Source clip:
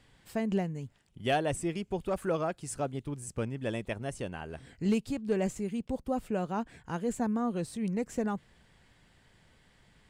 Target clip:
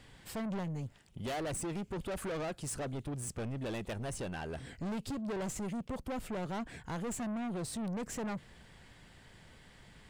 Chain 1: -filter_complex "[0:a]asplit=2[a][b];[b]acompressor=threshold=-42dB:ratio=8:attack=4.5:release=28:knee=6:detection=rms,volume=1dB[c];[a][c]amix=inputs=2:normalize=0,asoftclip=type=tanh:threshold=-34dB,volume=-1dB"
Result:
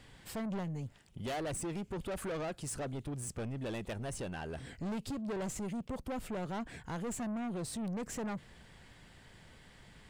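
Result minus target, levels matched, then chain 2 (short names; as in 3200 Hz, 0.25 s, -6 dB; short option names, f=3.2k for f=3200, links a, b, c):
compressor: peak gain reduction +8 dB
-filter_complex "[0:a]asplit=2[a][b];[b]acompressor=threshold=-33dB:ratio=8:attack=4.5:release=28:knee=6:detection=rms,volume=1dB[c];[a][c]amix=inputs=2:normalize=0,asoftclip=type=tanh:threshold=-34dB,volume=-1dB"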